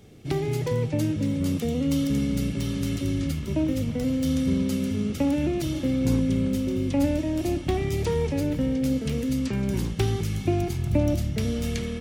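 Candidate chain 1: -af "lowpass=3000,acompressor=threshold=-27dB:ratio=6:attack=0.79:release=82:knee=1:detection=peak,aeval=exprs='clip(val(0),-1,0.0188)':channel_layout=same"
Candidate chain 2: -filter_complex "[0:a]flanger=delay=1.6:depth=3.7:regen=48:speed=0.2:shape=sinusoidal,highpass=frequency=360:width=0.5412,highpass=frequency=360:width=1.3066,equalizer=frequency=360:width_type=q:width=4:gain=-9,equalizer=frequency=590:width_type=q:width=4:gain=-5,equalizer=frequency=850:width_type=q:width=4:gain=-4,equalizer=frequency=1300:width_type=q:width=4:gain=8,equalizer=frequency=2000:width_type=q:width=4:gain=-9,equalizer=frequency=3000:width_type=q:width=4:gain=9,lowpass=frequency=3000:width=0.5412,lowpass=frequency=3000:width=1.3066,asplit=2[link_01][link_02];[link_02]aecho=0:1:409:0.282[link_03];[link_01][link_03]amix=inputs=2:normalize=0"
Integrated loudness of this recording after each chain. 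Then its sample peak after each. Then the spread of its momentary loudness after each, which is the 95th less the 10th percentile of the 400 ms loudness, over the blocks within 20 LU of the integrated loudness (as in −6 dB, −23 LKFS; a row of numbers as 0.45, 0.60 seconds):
−34.5, −40.0 LKFS; −22.5, −22.5 dBFS; 1, 5 LU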